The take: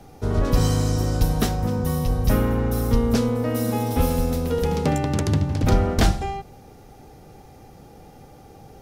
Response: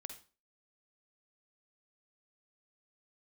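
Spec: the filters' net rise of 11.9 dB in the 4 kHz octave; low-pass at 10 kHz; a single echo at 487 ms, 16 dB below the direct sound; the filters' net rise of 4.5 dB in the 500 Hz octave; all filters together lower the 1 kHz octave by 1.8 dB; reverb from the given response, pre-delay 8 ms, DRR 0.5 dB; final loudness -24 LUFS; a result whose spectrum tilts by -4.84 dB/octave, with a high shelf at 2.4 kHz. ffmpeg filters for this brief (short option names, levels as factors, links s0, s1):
-filter_complex "[0:a]lowpass=10000,equalizer=f=500:t=o:g=6,equalizer=f=1000:t=o:g=-7,highshelf=f=2400:g=8.5,equalizer=f=4000:t=o:g=7.5,aecho=1:1:487:0.158,asplit=2[s0][s1];[1:a]atrim=start_sample=2205,adelay=8[s2];[s1][s2]afir=irnorm=-1:irlink=0,volume=1.58[s3];[s0][s3]amix=inputs=2:normalize=0,volume=0.447"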